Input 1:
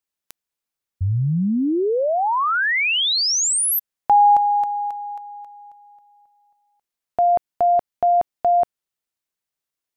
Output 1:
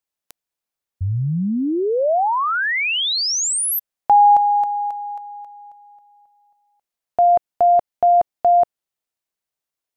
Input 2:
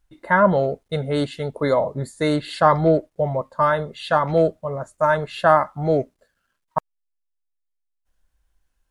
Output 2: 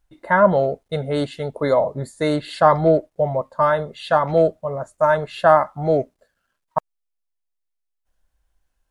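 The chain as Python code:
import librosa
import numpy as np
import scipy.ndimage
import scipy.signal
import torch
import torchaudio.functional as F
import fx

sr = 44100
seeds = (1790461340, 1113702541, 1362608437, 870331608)

y = fx.peak_eq(x, sr, hz=670.0, db=4.0, octaves=0.88)
y = F.gain(torch.from_numpy(y), -1.0).numpy()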